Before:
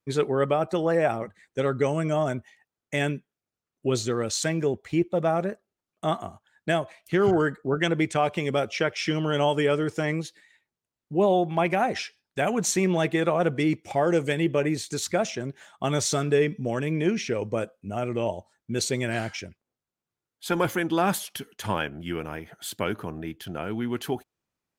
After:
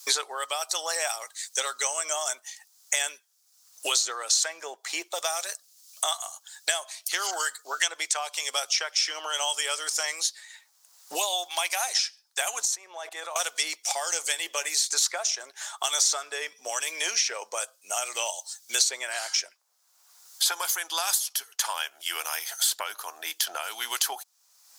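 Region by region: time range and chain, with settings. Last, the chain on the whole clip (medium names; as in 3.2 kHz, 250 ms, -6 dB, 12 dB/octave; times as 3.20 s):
12.62–13.36 s: high-pass 830 Hz 6 dB/octave + tilt shelf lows +8 dB, about 1.1 kHz + level held to a coarse grid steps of 21 dB
whole clip: high-pass 800 Hz 24 dB/octave; resonant high shelf 3.6 kHz +13.5 dB, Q 1.5; three bands compressed up and down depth 100%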